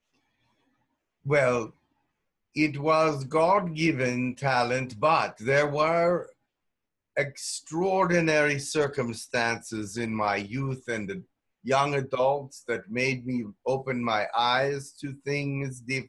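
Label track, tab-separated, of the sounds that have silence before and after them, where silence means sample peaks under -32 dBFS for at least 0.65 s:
1.260000	1.650000	sound
2.560000	6.230000	sound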